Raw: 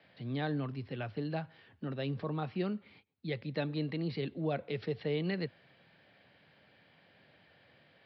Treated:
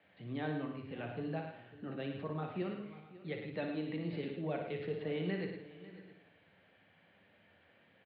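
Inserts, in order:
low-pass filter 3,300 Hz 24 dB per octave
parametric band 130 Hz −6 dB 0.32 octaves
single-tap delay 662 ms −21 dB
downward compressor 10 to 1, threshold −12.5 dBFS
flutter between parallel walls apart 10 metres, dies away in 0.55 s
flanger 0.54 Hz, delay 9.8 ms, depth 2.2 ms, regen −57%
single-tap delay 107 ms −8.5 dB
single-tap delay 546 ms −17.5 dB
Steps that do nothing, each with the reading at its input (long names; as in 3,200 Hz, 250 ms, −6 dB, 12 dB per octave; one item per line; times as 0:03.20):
downward compressor, threshold −12.5 dBFS: peak of its input −23.0 dBFS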